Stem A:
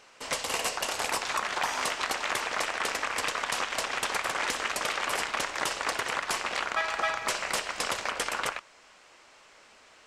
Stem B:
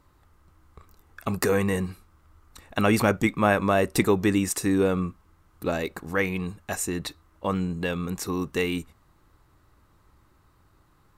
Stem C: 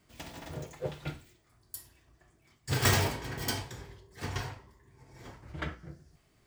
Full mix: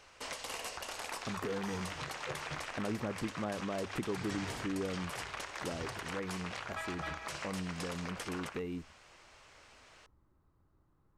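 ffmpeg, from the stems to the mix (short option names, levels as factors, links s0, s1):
-filter_complex "[0:a]bandreject=f=7500:w=22,alimiter=level_in=1.19:limit=0.0631:level=0:latency=1:release=307,volume=0.841,volume=0.668[s0];[1:a]tiltshelf=f=1400:g=8,bandreject=f=50:t=h:w=6,bandreject=f=100:t=h:w=6,volume=0.15,asplit=2[s1][s2];[2:a]lowpass=f=7500:w=0.5412,lowpass=f=7500:w=1.3066,adelay=1450,volume=0.501[s3];[s2]apad=whole_len=349215[s4];[s3][s4]sidechaincompress=threshold=0.0126:ratio=3:attack=16:release=157[s5];[s0][s1][s5]amix=inputs=3:normalize=0,acompressor=threshold=0.0141:ratio=2"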